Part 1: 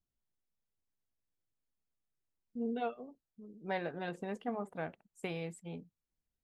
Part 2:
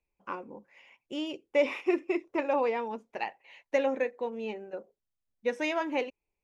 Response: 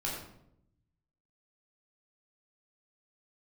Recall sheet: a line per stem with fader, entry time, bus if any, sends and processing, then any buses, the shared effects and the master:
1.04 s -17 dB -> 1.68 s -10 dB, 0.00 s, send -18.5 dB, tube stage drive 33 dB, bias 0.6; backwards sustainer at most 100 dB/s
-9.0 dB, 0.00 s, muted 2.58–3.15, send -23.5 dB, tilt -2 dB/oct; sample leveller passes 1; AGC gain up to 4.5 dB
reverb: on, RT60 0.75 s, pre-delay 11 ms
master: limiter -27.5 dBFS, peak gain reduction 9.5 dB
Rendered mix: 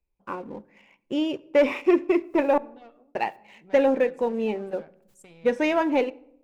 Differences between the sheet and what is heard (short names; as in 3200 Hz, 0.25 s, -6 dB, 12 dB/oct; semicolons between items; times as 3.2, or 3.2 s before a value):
stem 2 -9.0 dB -> -1.5 dB; master: missing limiter -27.5 dBFS, peak gain reduction 9.5 dB